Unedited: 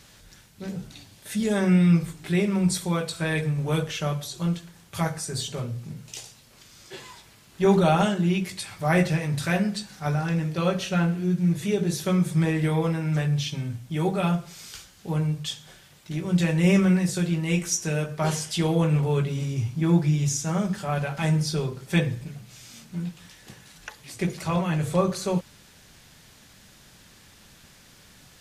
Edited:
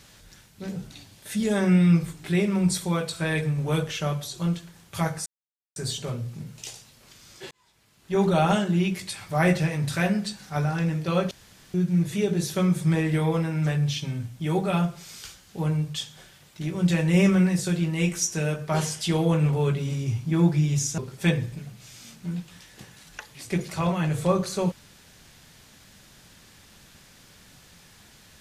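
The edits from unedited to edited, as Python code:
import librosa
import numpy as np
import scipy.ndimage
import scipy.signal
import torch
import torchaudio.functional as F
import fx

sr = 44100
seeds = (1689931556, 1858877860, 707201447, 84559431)

y = fx.edit(x, sr, fx.insert_silence(at_s=5.26, length_s=0.5),
    fx.fade_in_span(start_s=7.01, length_s=1.02),
    fx.room_tone_fill(start_s=10.81, length_s=0.43),
    fx.cut(start_s=20.48, length_s=1.19), tone=tone)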